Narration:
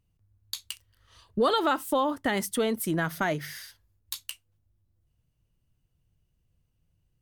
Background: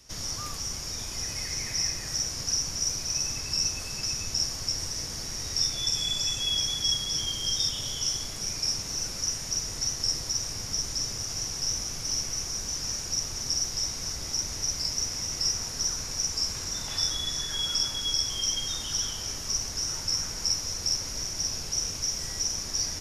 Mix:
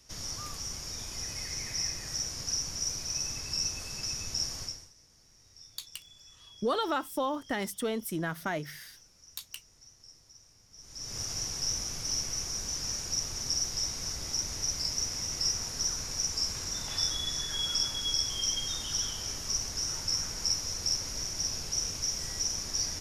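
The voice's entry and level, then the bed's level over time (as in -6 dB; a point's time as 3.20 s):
5.25 s, -5.5 dB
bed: 4.63 s -4.5 dB
4.94 s -26.5 dB
10.70 s -26.5 dB
11.18 s -2.5 dB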